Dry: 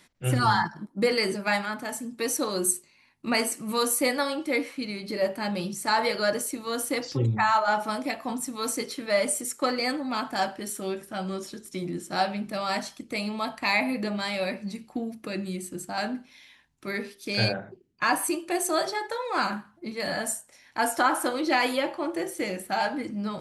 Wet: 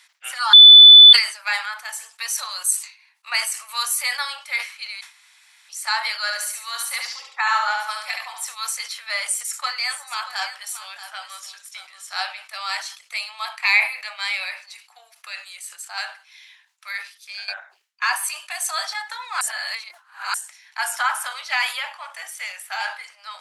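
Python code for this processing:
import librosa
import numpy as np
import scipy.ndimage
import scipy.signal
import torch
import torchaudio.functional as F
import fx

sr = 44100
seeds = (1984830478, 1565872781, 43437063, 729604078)

y = fx.echo_feedback(x, sr, ms=71, feedback_pct=35, wet_db=-4.0, at=(6.25, 8.45), fade=0.02)
y = fx.echo_single(y, sr, ms=630, db=-13.0, at=(9.84, 12.15), fade=0.02)
y = fx.peak_eq(y, sr, hz=2300.0, db=6.5, octaves=0.27, at=(13.51, 14.47))
y = fx.notch(y, sr, hz=4200.0, q=12.0, at=(20.88, 22.93))
y = fx.edit(y, sr, fx.bleep(start_s=0.53, length_s=0.6, hz=3490.0, db=-8.5),
    fx.room_tone_fill(start_s=5.01, length_s=0.68),
    fx.fade_out_to(start_s=16.89, length_s=0.59, floor_db=-18.5),
    fx.reverse_span(start_s=19.41, length_s=0.93), tone=tone)
y = scipy.signal.sosfilt(scipy.signal.bessel(8, 1500.0, 'highpass', norm='mag', fs=sr, output='sos'), y)
y = fx.high_shelf(y, sr, hz=11000.0, db=-8.0)
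y = fx.sustainer(y, sr, db_per_s=140.0)
y = y * 10.0 ** (7.0 / 20.0)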